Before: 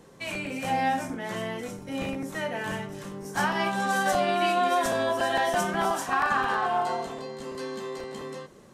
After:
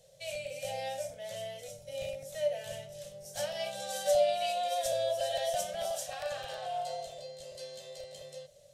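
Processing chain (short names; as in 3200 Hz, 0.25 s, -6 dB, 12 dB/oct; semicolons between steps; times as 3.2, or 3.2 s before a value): EQ curve 140 Hz 0 dB, 240 Hz -24 dB, 360 Hz -25 dB, 580 Hz +14 dB, 1000 Hz -21 dB, 3500 Hz +7 dB; gain -9 dB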